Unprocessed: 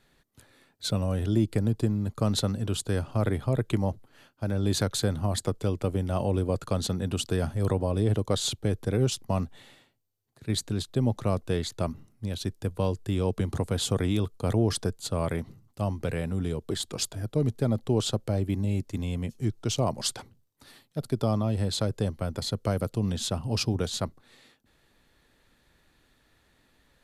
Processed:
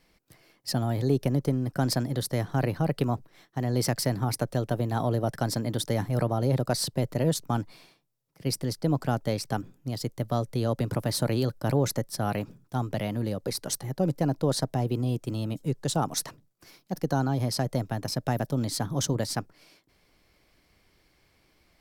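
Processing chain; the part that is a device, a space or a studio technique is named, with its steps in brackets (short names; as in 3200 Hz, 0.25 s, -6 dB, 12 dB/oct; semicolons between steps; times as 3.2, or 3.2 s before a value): nightcore (varispeed +24%)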